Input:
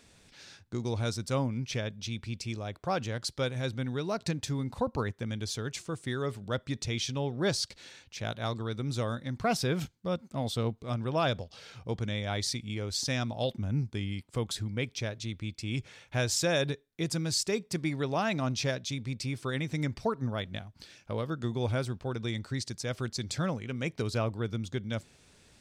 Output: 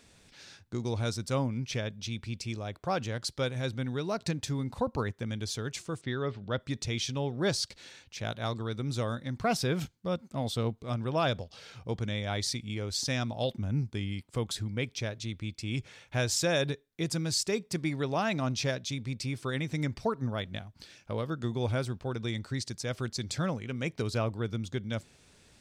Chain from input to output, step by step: 6.01–6.6 LPF 4700 Hz 24 dB/oct

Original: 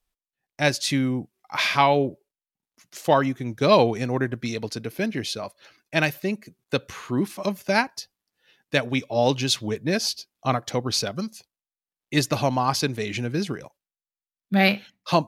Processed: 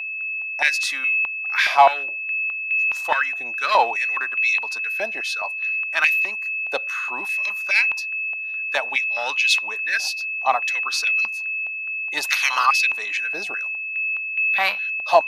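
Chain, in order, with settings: 12.23–12.65 spectral limiter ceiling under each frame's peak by 25 dB; whine 2600 Hz -26 dBFS; in parallel at -5 dB: hard clip -14 dBFS, distortion -15 dB; on the sum: stepped high-pass 4.8 Hz 720–2300 Hz; gain -5 dB

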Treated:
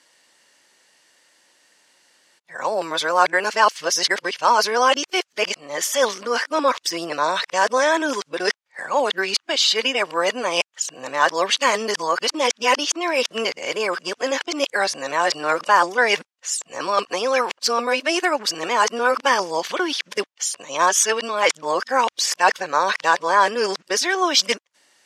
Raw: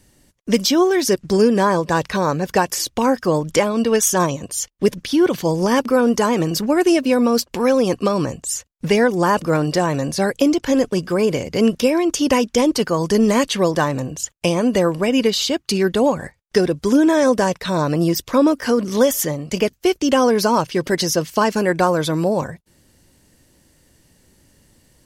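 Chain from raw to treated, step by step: whole clip reversed; HPF 920 Hz 12 dB/oct; air absorption 70 m; gain +6 dB

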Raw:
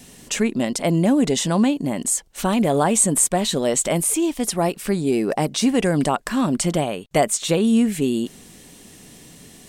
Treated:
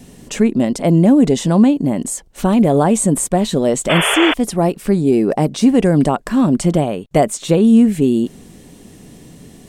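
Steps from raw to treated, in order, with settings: tilt shelf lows +5.5 dB, about 890 Hz; painted sound noise, 3.89–4.34, 390–3500 Hz -19 dBFS; gain +2.5 dB

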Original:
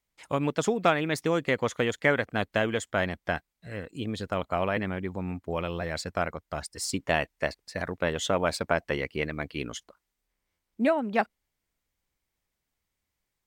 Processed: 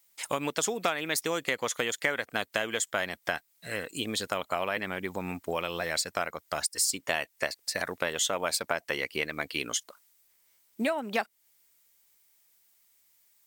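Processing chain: RIAA curve recording; compressor 3:1, threshold -35 dBFS, peak gain reduction 14 dB; gain +6.5 dB

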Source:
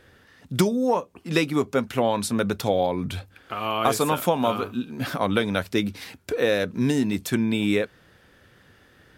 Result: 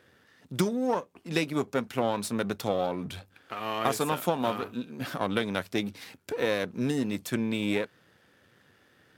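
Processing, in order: half-wave gain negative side -7 dB; HPF 110 Hz 12 dB/oct; gain -3.5 dB

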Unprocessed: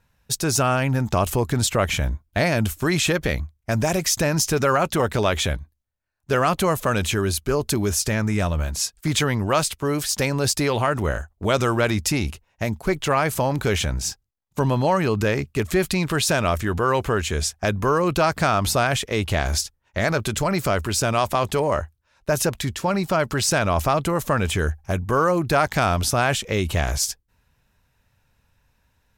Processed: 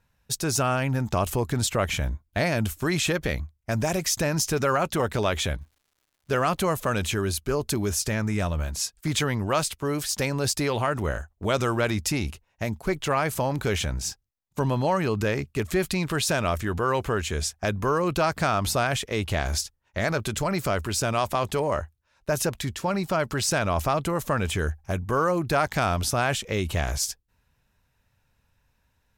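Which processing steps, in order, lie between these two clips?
5.58–6.58 crackle 270/s -51 dBFS; gain -4 dB

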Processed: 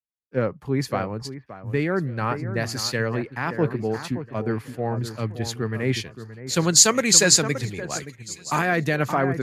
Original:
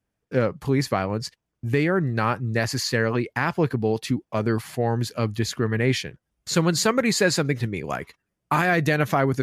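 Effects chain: 6.62–8.59 bell 6800 Hz +10.5 dB 0.85 oct; echo with dull and thin repeats by turns 0.573 s, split 2000 Hz, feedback 52%, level -8 dB; three-band expander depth 70%; gain -2 dB

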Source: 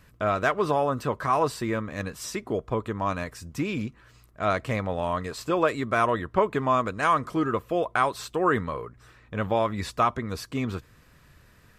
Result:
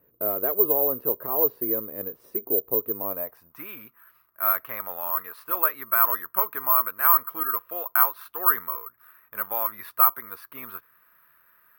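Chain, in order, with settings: band-pass sweep 430 Hz -> 1300 Hz, 3.06–3.6; careless resampling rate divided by 3×, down filtered, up zero stuff; gain +2 dB

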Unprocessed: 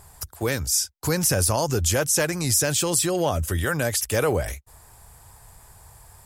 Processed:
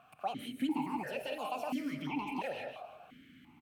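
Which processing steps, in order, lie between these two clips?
compressor 2:1, threshold -35 dBFS, peak gain reduction 10 dB; on a send: frequency-shifting echo 0.278 s, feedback 46%, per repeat -56 Hz, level -13 dB; on the sum: non-linear reverb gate 0.35 s rising, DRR 2.5 dB; speed mistake 45 rpm record played at 78 rpm; vowel sequencer 2.9 Hz; gain +5.5 dB

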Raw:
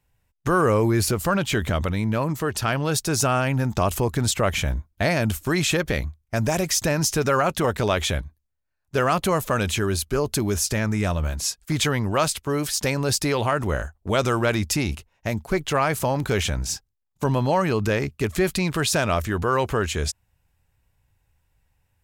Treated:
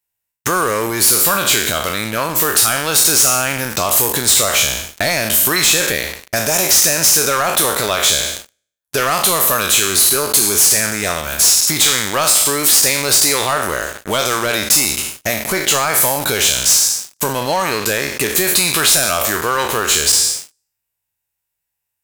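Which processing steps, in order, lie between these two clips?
spectral trails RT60 0.67 s; dynamic EQ 3900 Hz, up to +4 dB, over -46 dBFS, Q 6.1; compressor 4:1, threshold -27 dBFS, peak gain reduction 11.5 dB; RIAA curve recording; sample leveller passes 5; gain -4 dB

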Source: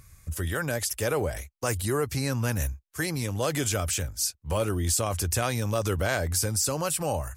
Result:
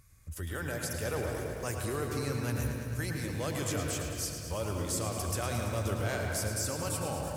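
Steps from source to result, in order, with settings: reverb RT60 2.1 s, pre-delay 98 ms, DRR 2 dB; lo-fi delay 0.11 s, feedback 80%, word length 8-bit, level -9.5 dB; gain -9 dB

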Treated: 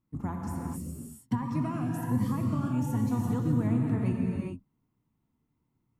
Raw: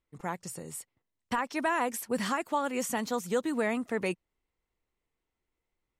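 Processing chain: octaver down 1 oct, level +3 dB; low shelf 62 Hz -7.5 dB; non-linear reverb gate 0.45 s flat, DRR 0 dB; compressor 2:1, threshold -40 dBFS, peak gain reduction 10.5 dB; graphic EQ 125/250/500/1000/2000/4000/8000 Hz +11/+12/-8/+5/-7/-6/-6 dB; 0.78–3.11 cascading phaser rising 1.2 Hz

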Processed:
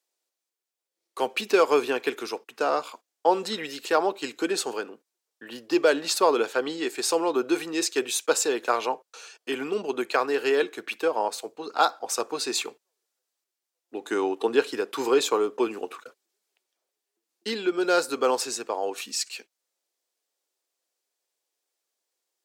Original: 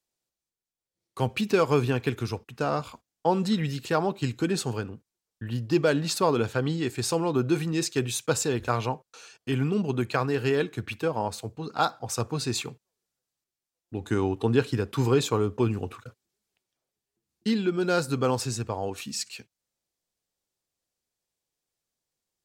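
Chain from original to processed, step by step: HPF 340 Hz 24 dB/oct; gain +3.5 dB

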